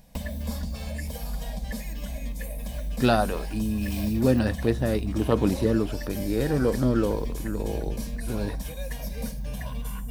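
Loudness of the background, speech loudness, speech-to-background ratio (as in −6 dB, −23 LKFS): −34.5 LKFS, −26.5 LKFS, 8.0 dB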